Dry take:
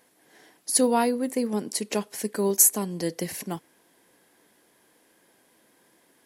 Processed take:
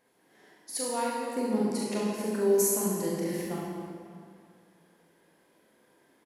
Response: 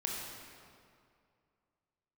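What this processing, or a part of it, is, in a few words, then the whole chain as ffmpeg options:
swimming-pool hall: -filter_complex "[0:a]asettb=1/sr,asplit=3[link_01][link_02][link_03];[link_01]atrim=end=0.774[link_04];[link_02]atrim=start=0.77:end=1.36,asetpts=PTS-STARTPTS,afade=type=in:duration=0.004:curve=qsin,afade=type=out:start_time=0.586:duration=0.004:curve=qsin,highpass=frequency=930:poles=1[link_05];[link_03]atrim=start=1.356[link_06];[link_04][link_05]acrossfade=duration=0.004:curve1=hsin:curve2=qsin[link_07];[link_07][link_06]acrossfade=duration=0.004:curve1=qsin:curve2=hsin,aecho=1:1:42|68:0.631|0.531[link_08];[1:a]atrim=start_sample=2205[link_09];[link_08][link_09]afir=irnorm=-1:irlink=0,highshelf=frequency=3500:gain=-8,volume=-6dB"

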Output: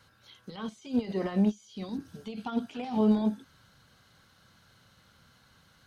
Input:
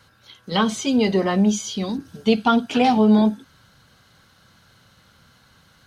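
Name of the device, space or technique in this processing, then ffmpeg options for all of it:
de-esser from a sidechain: -filter_complex "[0:a]asplit=2[link_01][link_02];[link_02]highpass=5900,apad=whole_len=258598[link_03];[link_01][link_03]sidechaincompress=threshold=-50dB:ratio=16:attack=0.86:release=43,volume=-6.5dB"

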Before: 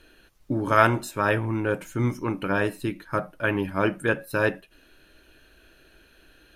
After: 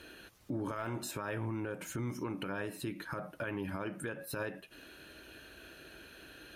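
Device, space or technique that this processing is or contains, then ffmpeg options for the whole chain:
podcast mastering chain: -af "highpass=75,deesser=0.7,acompressor=threshold=-33dB:ratio=3,alimiter=level_in=8.5dB:limit=-24dB:level=0:latency=1:release=106,volume=-8.5dB,volume=4.5dB" -ar 48000 -c:a libmp3lame -b:a 96k

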